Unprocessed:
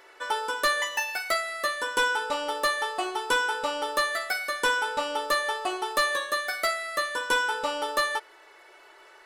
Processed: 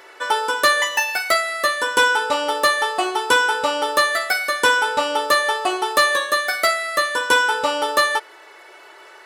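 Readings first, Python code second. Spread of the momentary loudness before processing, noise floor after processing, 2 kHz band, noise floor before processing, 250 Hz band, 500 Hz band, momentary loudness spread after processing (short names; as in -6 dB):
4 LU, -45 dBFS, +8.5 dB, -53 dBFS, +8.5 dB, +8.5 dB, 4 LU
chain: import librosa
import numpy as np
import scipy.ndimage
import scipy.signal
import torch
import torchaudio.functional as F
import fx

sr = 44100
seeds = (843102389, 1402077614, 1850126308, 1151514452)

y = scipy.signal.sosfilt(scipy.signal.butter(2, 59.0, 'highpass', fs=sr, output='sos'), x)
y = y * 10.0 ** (8.5 / 20.0)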